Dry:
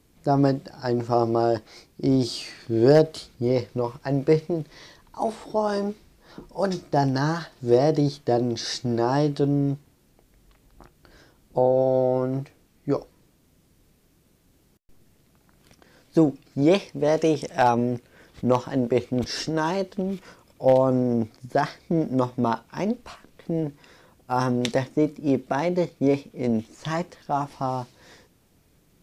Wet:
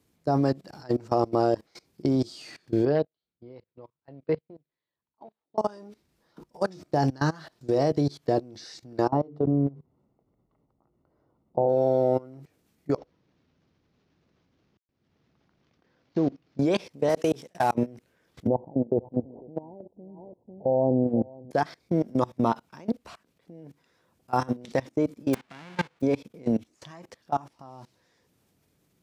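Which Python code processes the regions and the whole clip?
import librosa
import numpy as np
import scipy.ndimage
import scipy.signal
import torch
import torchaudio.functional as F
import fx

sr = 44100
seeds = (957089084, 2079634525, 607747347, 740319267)

y = fx.chain(x, sr, fx.steep_lowpass(hz=4200.0, slope=36),
    fx.upward_expand(threshold_db=-36.0, expansion=2.5), at=(2.85, 5.58))
y = fx.chain(y, sr, fx.savgol(points=65),
    fx.hum_notches(base_hz=50, count=10), at=(9.08, 11.69))
y = fx.chain(y, sr, fx.cvsd(bps=32000),
    fx.high_shelf(hz=3300.0, db=-11.5), at=(12.97, 16.59))
y = fx.chain(y, sr, fx.cvsd(bps=64000),
    fx.highpass(hz=95.0, slope=12),
    fx.level_steps(step_db=20), at=(17.09, 17.75))
y = fx.chain(y, sr, fx.steep_lowpass(hz=870.0, slope=72),
    fx.echo_single(ms=498, db=-16.0), at=(18.47, 21.51))
y = fx.envelope_flatten(y, sr, power=0.1, at=(25.33, 26.0), fade=0.02)
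y = fx.lowpass(y, sr, hz=2200.0, slope=12, at=(25.33, 26.0), fade=0.02)
y = fx.level_steps(y, sr, step_db=23)
y = scipy.signal.sosfilt(scipy.signal.butter(2, 77.0, 'highpass', fs=sr, output='sos'), y)
y = y * librosa.db_to_amplitude(1.0)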